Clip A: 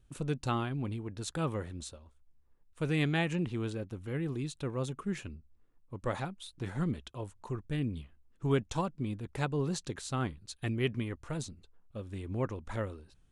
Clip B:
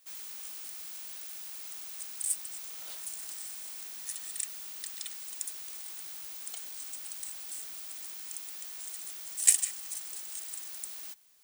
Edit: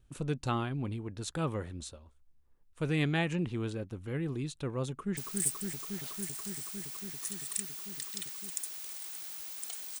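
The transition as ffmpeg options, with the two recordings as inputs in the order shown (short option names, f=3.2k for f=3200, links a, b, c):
-filter_complex "[0:a]apad=whole_dur=10,atrim=end=10,atrim=end=5.172[a];[1:a]atrim=start=2.008:end=6.84[b];[a][b]acrossfade=d=0.004:c1=hsin:c2=hsin,asplit=2[c][d];[d]afade=t=in:st=4.89:d=0.01,afade=t=out:st=5.17:d=0.01,aecho=0:1:280|560|840|1120|1400|1680|1960|2240|2520|2800|3080|3360:0.668344|0.568092|0.482878|0.410447|0.34888|0.296548|0.252066|0.214256|0.182117|0.1548|0.13158|0.111843[e];[c][e]amix=inputs=2:normalize=0"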